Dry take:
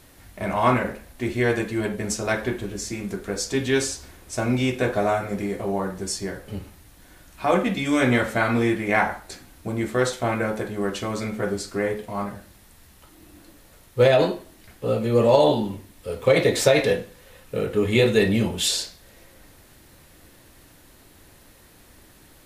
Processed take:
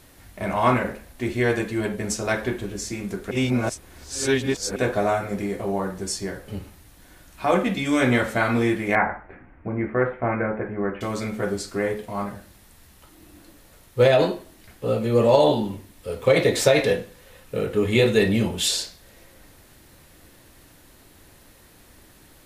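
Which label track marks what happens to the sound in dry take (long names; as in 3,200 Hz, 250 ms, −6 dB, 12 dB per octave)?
3.310000	4.760000	reverse
8.950000	11.010000	Butterworth low-pass 2,300 Hz 48 dB per octave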